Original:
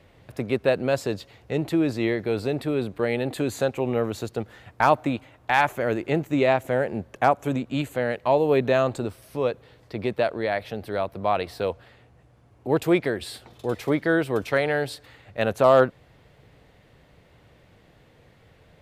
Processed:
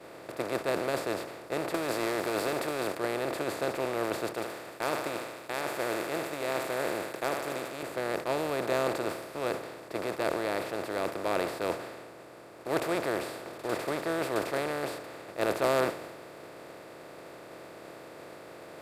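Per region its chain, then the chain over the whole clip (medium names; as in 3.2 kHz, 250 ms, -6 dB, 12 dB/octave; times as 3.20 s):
1.74–2.97 s: RIAA curve recording + waveshaping leveller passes 2
4.34–7.83 s: tilt EQ +4 dB/octave + compression 1.5:1, threshold -25 dBFS + thinning echo 76 ms, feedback 81%, high-pass 970 Hz, level -12.5 dB
whole clip: spectral levelling over time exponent 0.2; expander -4 dBFS; transient shaper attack +1 dB, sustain +5 dB; trim -9 dB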